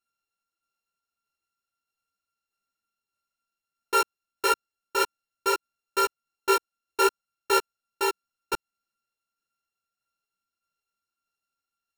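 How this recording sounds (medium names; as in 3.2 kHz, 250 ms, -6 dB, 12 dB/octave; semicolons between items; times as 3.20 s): a buzz of ramps at a fixed pitch in blocks of 32 samples; tremolo saw down 1.6 Hz, depth 30%; a shimmering, thickened sound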